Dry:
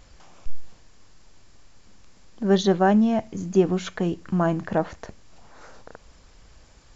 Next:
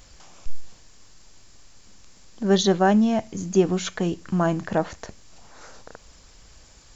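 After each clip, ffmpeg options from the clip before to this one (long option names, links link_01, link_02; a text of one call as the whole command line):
ffmpeg -i in.wav -af "highshelf=frequency=4300:gain=11" out.wav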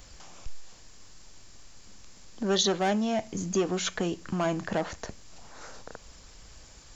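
ffmpeg -i in.wav -filter_complex "[0:a]acrossover=split=360|2400[link_01][link_02][link_03];[link_01]acompressor=threshold=-31dB:ratio=6[link_04];[link_02]asoftclip=type=tanh:threshold=-24dB[link_05];[link_04][link_05][link_03]amix=inputs=3:normalize=0" out.wav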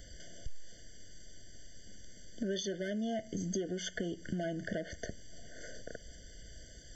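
ffmpeg -i in.wav -af "acompressor=threshold=-33dB:ratio=6,afftfilt=real='re*eq(mod(floor(b*sr/1024/720),2),0)':imag='im*eq(mod(floor(b*sr/1024/720),2),0)':win_size=1024:overlap=0.75" out.wav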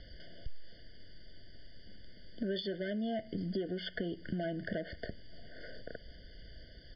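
ffmpeg -i in.wav -af "aresample=11025,aresample=44100" out.wav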